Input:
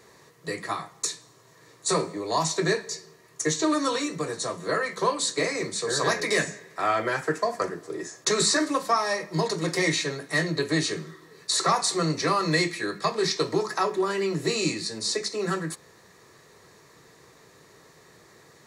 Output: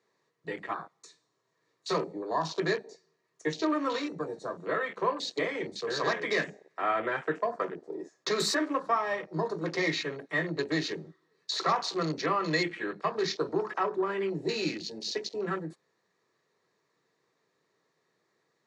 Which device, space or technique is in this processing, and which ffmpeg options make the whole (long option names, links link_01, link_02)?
over-cleaned archive recording: -af "highpass=170,lowpass=5700,afwtdn=0.0178,volume=-4dB"